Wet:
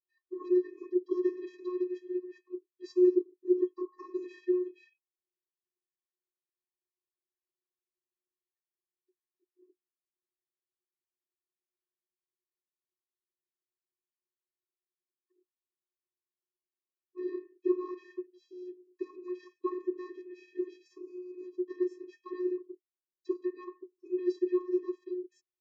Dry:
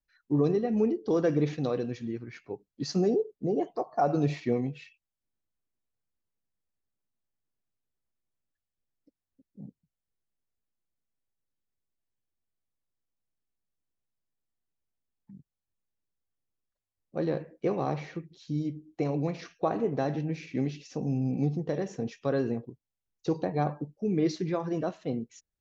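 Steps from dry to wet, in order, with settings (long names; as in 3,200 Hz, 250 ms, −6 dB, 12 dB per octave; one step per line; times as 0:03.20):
channel vocoder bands 32, square 362 Hz
level −3 dB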